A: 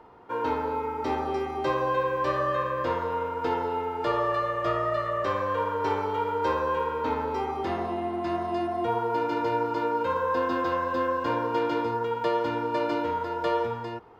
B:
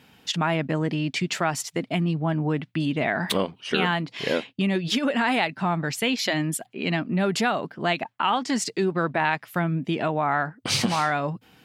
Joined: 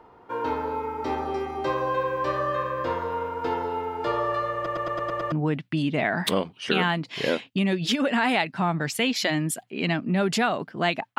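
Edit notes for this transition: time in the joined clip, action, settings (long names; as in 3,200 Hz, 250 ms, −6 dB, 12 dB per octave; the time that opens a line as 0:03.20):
A
0:04.55: stutter in place 0.11 s, 7 plays
0:05.32: continue with B from 0:02.35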